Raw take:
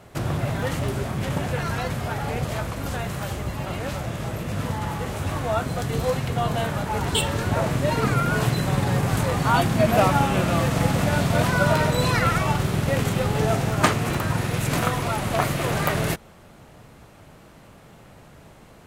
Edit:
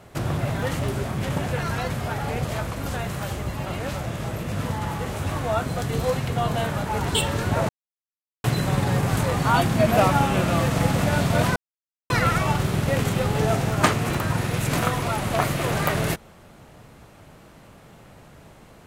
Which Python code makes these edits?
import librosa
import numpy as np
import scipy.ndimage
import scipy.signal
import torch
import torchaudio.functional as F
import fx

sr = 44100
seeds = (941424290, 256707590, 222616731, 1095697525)

y = fx.edit(x, sr, fx.silence(start_s=7.69, length_s=0.75),
    fx.silence(start_s=11.56, length_s=0.54), tone=tone)